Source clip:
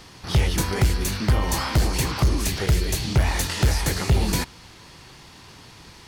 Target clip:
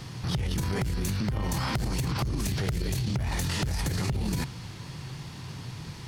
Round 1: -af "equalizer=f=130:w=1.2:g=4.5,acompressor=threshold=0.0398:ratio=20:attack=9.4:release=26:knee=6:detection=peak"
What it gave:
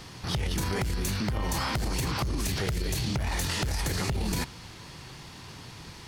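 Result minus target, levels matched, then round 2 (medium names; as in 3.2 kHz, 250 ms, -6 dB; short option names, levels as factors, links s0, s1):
125 Hz band -3.5 dB
-af "equalizer=f=130:w=1.2:g=15,acompressor=threshold=0.0398:ratio=20:attack=9.4:release=26:knee=6:detection=peak"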